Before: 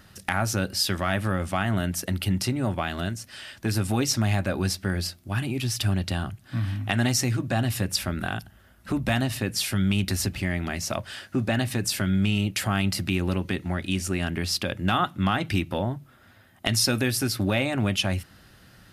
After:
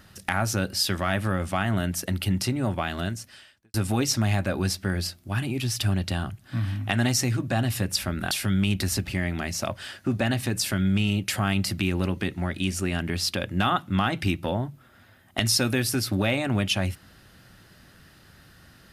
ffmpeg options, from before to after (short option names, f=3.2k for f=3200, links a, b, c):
-filter_complex "[0:a]asplit=3[a][b][c];[a]atrim=end=3.74,asetpts=PTS-STARTPTS,afade=t=out:st=3.19:d=0.55:c=qua[d];[b]atrim=start=3.74:end=8.312,asetpts=PTS-STARTPTS,afade=t=in:d=0.004:c=hsin[e];[c]atrim=start=9.588[f];[d][e]concat=n=2:v=0:a=1[g];[g][f]acrossfade=d=0.004:c1=hsin:c2=hsin"